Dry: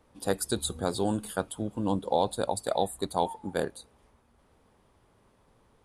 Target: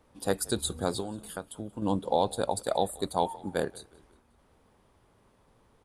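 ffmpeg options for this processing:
-filter_complex "[0:a]asettb=1/sr,asplit=3[a][b][c];[a]atrim=end=1.004[d];[b]atrim=start=1:end=1.82,asetpts=PTS-STARTPTS,afade=t=in:d=0.004:c=qsin,afade=t=out:st=0.816:d=0.004:c=qsin,acompressor=threshold=-35dB:ratio=4[e];[c]atrim=start=1.816[f];[d][e]acrossfade=d=0.004:c1=hsin:c2=qsin[g];[g][f]acrossfade=d=0.004:c1=qsin:c2=hsin,asplit=2[h][i];[i]asplit=3[j][k][l];[j]adelay=180,afreqshift=-48,volume=-23.5dB[m];[k]adelay=360,afreqshift=-96,volume=-29.9dB[n];[l]adelay=540,afreqshift=-144,volume=-36.3dB[o];[m][n][o]amix=inputs=3:normalize=0[p];[h][p]amix=inputs=2:normalize=0"

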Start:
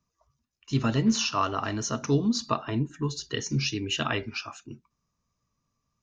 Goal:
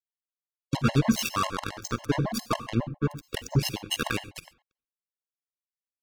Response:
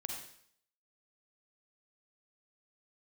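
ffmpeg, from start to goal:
-filter_complex "[0:a]acrusher=bits=3:mix=0:aa=0.5,asplit=2[a][b];[1:a]atrim=start_sample=2205,atrim=end_sample=6174,lowshelf=f=200:g=9[c];[b][c]afir=irnorm=-1:irlink=0,volume=-7dB[d];[a][d]amix=inputs=2:normalize=0,afftfilt=real='re*gt(sin(2*PI*7.3*pts/sr)*(1-2*mod(floor(b*sr/1024/550),2)),0)':imag='im*gt(sin(2*PI*7.3*pts/sr)*(1-2*mod(floor(b*sr/1024/550),2)),0)':win_size=1024:overlap=0.75"

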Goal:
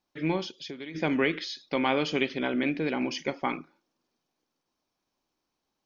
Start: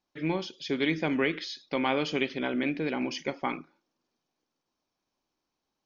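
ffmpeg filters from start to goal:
-filter_complex "[0:a]asplit=3[a][b][c];[a]afade=t=out:st=0.51:d=0.02[d];[b]acompressor=threshold=-39dB:ratio=8,afade=t=in:st=0.51:d=0.02,afade=t=out:st=0.94:d=0.02[e];[c]afade=t=in:st=0.94:d=0.02[f];[d][e][f]amix=inputs=3:normalize=0,volume=1.5dB"

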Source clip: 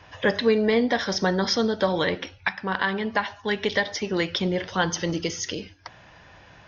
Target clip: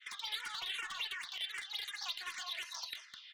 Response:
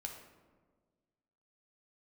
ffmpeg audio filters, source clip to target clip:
-filter_complex "[0:a]highpass=f=910:w=0.5412,highpass=f=910:w=1.3066,agate=range=-33dB:threshold=-46dB:ratio=3:detection=peak,lowpass=f=2.1k:w=0.5412,lowpass=f=2.1k:w=1.3066,aecho=1:1:5.7:0.32,acompressor=threshold=-39dB:ratio=12,asoftclip=type=tanh:threshold=-39.5dB,aecho=1:1:414:0.708,asetrate=88200,aresample=44100,asplit=2[a][b];[b]afreqshift=-2.7[c];[a][c]amix=inputs=2:normalize=1,volume=7.5dB"

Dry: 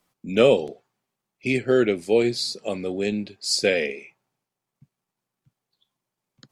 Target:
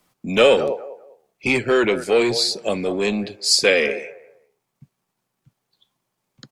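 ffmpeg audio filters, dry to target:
-filter_complex "[0:a]acrossover=split=550|1900[a][b][c];[a]asoftclip=type=tanh:threshold=-26.5dB[d];[b]asplit=2[e][f];[f]adelay=199,lowpass=f=1.5k:p=1,volume=-6.5dB,asplit=2[g][h];[h]adelay=199,lowpass=f=1.5k:p=1,volume=0.27,asplit=2[i][j];[j]adelay=199,lowpass=f=1.5k:p=1,volume=0.27[k];[e][g][i][k]amix=inputs=4:normalize=0[l];[d][l][c]amix=inputs=3:normalize=0,volume=7dB"

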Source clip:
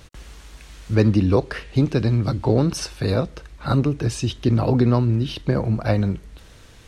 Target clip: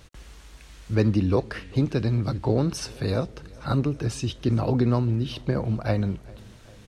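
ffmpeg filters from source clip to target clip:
-af "aecho=1:1:396|792|1188|1584:0.0668|0.0401|0.0241|0.0144,volume=-4.5dB"

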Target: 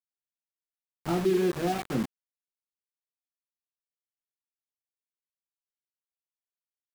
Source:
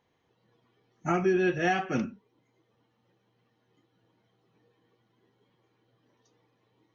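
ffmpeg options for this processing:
-af "flanger=delay=1.1:depth=8.8:regen=-80:speed=1.9:shape=triangular,lowpass=f=1k:w=0.5412,lowpass=f=1k:w=1.3066,aeval=exprs='val(0)*gte(abs(val(0)),0.015)':c=same,equalizer=f=640:t=o:w=0.77:g=-5,volume=6dB"

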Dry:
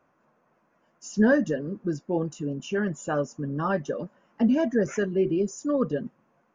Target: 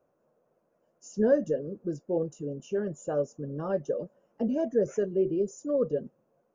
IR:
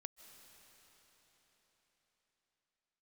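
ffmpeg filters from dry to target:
-af "equalizer=f=250:t=o:w=1:g=-5,equalizer=f=500:t=o:w=1:g=9,equalizer=f=1k:t=o:w=1:g=-7,equalizer=f=2k:t=o:w=1:g=-10,equalizer=f=4k:t=o:w=1:g=-7,volume=-4.5dB"

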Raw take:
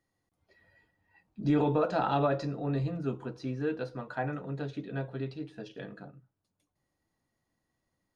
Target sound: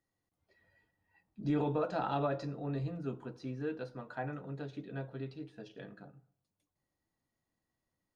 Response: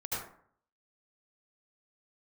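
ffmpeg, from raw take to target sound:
-filter_complex "[0:a]asplit=2[a][b];[1:a]atrim=start_sample=2205,lowpass=1.3k[c];[b][c]afir=irnorm=-1:irlink=0,volume=-23dB[d];[a][d]amix=inputs=2:normalize=0,volume=-6dB"

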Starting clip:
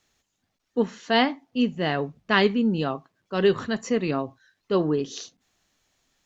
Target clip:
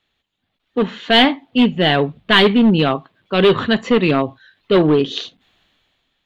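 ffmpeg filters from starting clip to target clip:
-af "volume=19dB,asoftclip=hard,volume=-19dB,dynaudnorm=f=130:g=11:m=12dB,highshelf=f=4.5k:t=q:w=3:g=-9,volume=-1dB"

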